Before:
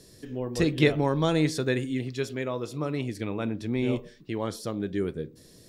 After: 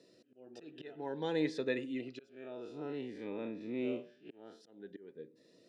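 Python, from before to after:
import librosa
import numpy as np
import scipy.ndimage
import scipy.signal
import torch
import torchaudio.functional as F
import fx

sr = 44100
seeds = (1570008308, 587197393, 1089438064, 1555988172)

y = fx.spec_blur(x, sr, span_ms=96.0, at=(2.29, 4.61))
y = scipy.signal.sosfilt(scipy.signal.butter(2, 3100.0, 'lowpass', fs=sr, output='sos'), y)
y = fx.notch_comb(y, sr, f0_hz=1100.0)
y = fx.auto_swell(y, sr, attack_ms=575.0)
y = scipy.signal.sosfilt(scipy.signal.butter(2, 310.0, 'highpass', fs=sr, output='sos'), y)
y = fx.notch_cascade(y, sr, direction='rising', hz=0.54)
y = F.gain(torch.from_numpy(y), -3.5).numpy()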